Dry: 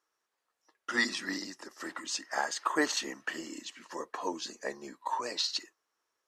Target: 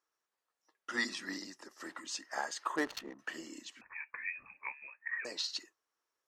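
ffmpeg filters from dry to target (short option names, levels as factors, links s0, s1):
-filter_complex "[0:a]asettb=1/sr,asplit=3[s0][s1][s2];[s0]atrim=end=2.764[s3];[s1]atrim=start=2.76:end=3.19,asetpts=PTS-STARTPTS,afade=t=in:d=0.004:c=qsin,afade=t=out:st=0.426:d=0.004:c=qsin,adynamicsmooth=sensitivity=5:basefreq=580[s4];[s2]atrim=start=3.186[s5];[s3][s4]acrossfade=d=0.004:c1=hsin:c2=qsin[s6];[s6][s5]acrossfade=d=0.004:c1=qsin:c2=hsin,asettb=1/sr,asplit=3[s7][s8][s9];[s7]atrim=end=3.814[s10];[s8]atrim=start=3.81:end=5.25,asetpts=PTS-STARTPTS,afade=t=in:d=0.004:c=qsin,afade=t=out:st=1.436:d=0.004:c=qsin,lowpass=f=2400:t=q:w=0.5098,lowpass=f=2400:t=q:w=0.6013,lowpass=f=2400:t=q:w=0.9,lowpass=f=2400:t=q:w=2.563,afreqshift=-2800[s11];[s9]atrim=start=5.246[s12];[s10][s11]acrossfade=d=0.004:c1=hsin:c2=qsin[s13];[s13][s12]acrossfade=d=0.004:c1=qsin:c2=hsin,volume=0.531"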